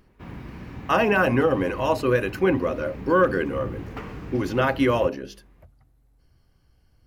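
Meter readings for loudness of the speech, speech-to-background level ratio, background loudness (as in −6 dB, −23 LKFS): −23.0 LKFS, 15.5 dB, −38.5 LKFS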